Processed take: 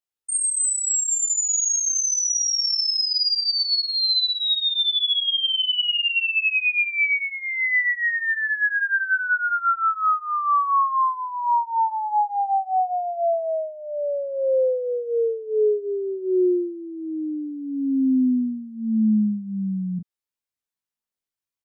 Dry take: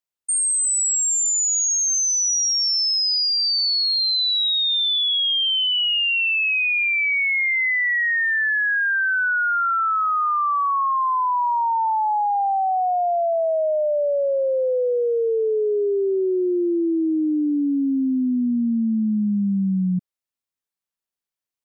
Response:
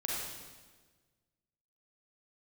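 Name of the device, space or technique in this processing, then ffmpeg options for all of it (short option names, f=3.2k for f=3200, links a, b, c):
double-tracked vocal: -filter_complex "[0:a]asplit=2[a][b];[b]adelay=19,volume=-6dB[c];[a][c]amix=inputs=2:normalize=0,flanger=delay=16.5:depth=3.4:speed=0.3,asettb=1/sr,asplit=3[d][e][f];[d]atrim=end=11.464[g];[e]atrim=start=11.46:end=12.39,asetpts=PTS-STARTPTS,afade=t=in:d=0.004:c=qsin,afade=t=out:st=0.926:d=0.004:c=qsin,highpass=110[h];[f]atrim=start=12.386[i];[g][h]acrossfade=d=0.004:c1=hsin:c2=qsin[j];[j][i]acrossfade=d=0.004:c1=qsin:c2=hsin"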